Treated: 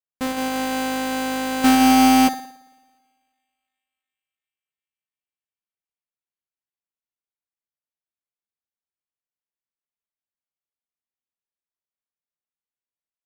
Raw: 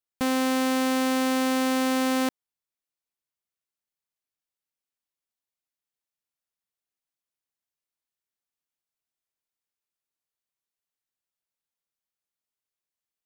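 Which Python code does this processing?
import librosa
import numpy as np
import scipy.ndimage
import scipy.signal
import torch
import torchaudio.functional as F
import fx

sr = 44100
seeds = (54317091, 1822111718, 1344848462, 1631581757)

y = fx.halfwave_hold(x, sr, at=(1.64, 2.28))
y = fx.echo_banded(y, sr, ms=348, feedback_pct=66, hz=2500.0, wet_db=-21.5)
y = fx.rev_spring(y, sr, rt60_s=1.6, pass_ms=(55,), chirp_ms=60, drr_db=4.5)
y = np.repeat(y[::8], 8)[:len(y)]
y = fx.upward_expand(y, sr, threshold_db=-35.0, expansion=2.5)
y = y * 10.0 ** (7.5 / 20.0)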